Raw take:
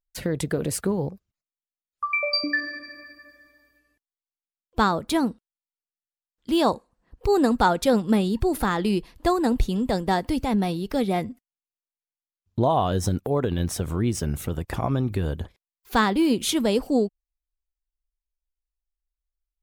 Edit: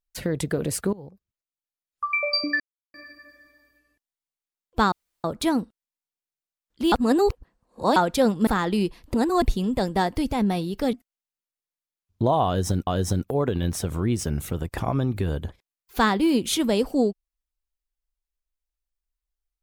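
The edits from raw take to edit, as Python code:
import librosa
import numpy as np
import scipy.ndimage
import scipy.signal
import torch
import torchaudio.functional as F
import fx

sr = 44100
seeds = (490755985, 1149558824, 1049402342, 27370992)

y = fx.edit(x, sr, fx.fade_in_from(start_s=0.93, length_s=1.12, floor_db=-18.5),
    fx.silence(start_s=2.6, length_s=0.34),
    fx.insert_room_tone(at_s=4.92, length_s=0.32),
    fx.reverse_span(start_s=6.6, length_s=1.04),
    fx.cut(start_s=8.15, length_s=0.44),
    fx.reverse_span(start_s=9.26, length_s=0.28),
    fx.cut(start_s=11.05, length_s=0.25),
    fx.repeat(start_s=12.83, length_s=0.41, count=2), tone=tone)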